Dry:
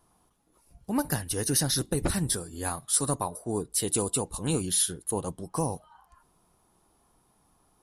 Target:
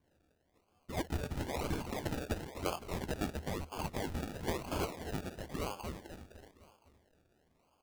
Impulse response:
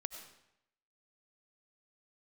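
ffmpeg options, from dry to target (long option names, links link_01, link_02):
-filter_complex "[0:a]aderivative,asplit=2[link_01][link_02];[link_02]adelay=254,lowpass=frequency=2600:poles=1,volume=-5dB,asplit=2[link_03][link_04];[link_04]adelay=254,lowpass=frequency=2600:poles=1,volume=0.5,asplit=2[link_05][link_06];[link_06]adelay=254,lowpass=frequency=2600:poles=1,volume=0.5,asplit=2[link_07][link_08];[link_08]adelay=254,lowpass=frequency=2600:poles=1,volume=0.5,asplit=2[link_09][link_10];[link_10]adelay=254,lowpass=frequency=2600:poles=1,volume=0.5,asplit=2[link_11][link_12];[link_12]adelay=254,lowpass=frequency=2600:poles=1,volume=0.5[link_13];[link_03][link_05][link_07][link_09][link_11][link_13]amix=inputs=6:normalize=0[link_14];[link_01][link_14]amix=inputs=2:normalize=0,lowpass=frequency=3200:width_type=q:width=0.5098,lowpass=frequency=3200:width_type=q:width=0.6013,lowpass=frequency=3200:width_type=q:width=0.9,lowpass=frequency=3200:width_type=q:width=2.563,afreqshift=-3800,acrusher=samples=33:mix=1:aa=0.000001:lfo=1:lforange=19.8:lforate=1,equalizer=frequency=77:width_type=o:width=0.27:gain=9.5,volume=14dB"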